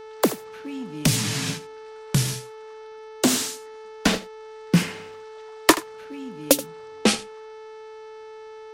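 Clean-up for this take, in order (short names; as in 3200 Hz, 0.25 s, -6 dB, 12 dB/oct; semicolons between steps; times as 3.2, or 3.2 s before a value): de-hum 437 Hz, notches 14; inverse comb 79 ms -16 dB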